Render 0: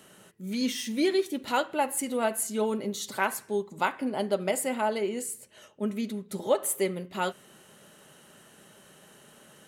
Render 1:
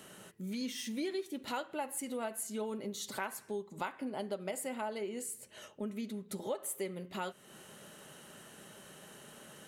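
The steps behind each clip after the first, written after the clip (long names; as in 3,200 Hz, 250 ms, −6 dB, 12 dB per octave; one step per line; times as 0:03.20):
downward compressor 2.5 to 1, threshold −42 dBFS, peak gain reduction 15.5 dB
level +1 dB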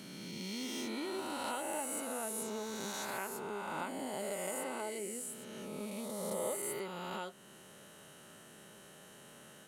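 peak hold with a rise ahead of every peak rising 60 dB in 2.72 s
level −6 dB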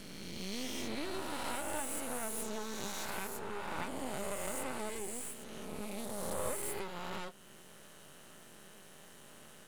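half-wave rectification
level +4 dB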